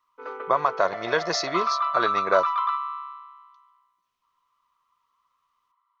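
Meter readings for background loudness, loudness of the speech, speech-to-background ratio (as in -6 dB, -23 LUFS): -27.5 LUFS, -26.0 LUFS, 1.5 dB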